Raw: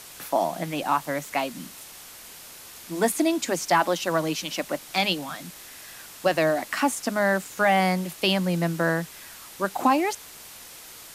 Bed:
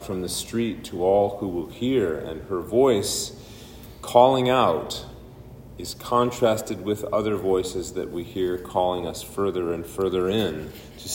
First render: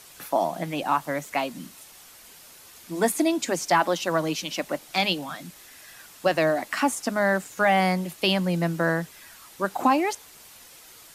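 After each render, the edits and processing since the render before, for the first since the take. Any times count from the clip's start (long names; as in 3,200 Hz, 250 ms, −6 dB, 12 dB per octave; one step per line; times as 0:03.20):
broadband denoise 6 dB, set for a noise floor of −45 dBFS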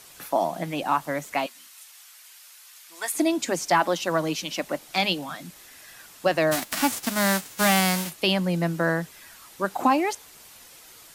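0:01.46–0:03.14: high-pass filter 1,300 Hz
0:06.51–0:08.09: spectral envelope flattened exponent 0.3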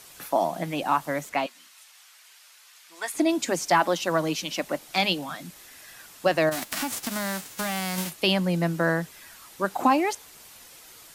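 0:01.29–0:03.29: high-shelf EQ 8,100 Hz −10.5 dB
0:06.49–0:07.98: downward compressor, threshold −25 dBFS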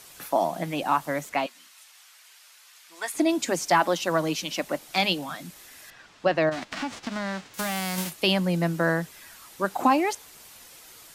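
0:05.90–0:07.54: high-frequency loss of the air 140 metres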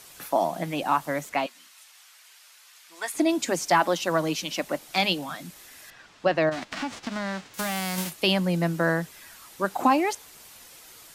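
no processing that can be heard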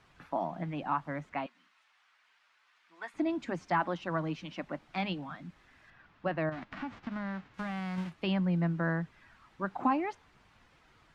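Bessel low-pass filter 1,100 Hz, order 2
parametric band 500 Hz −11.5 dB 1.9 octaves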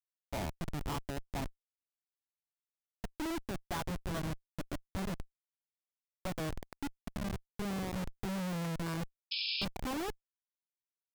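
comparator with hysteresis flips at −32.5 dBFS
0:09.31–0:09.65: sound drawn into the spectrogram noise 2,300–5,300 Hz −36 dBFS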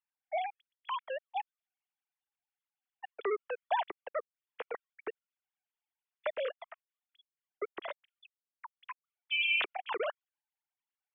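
three sine waves on the formant tracks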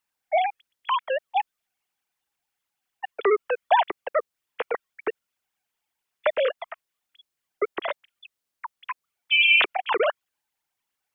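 level +12 dB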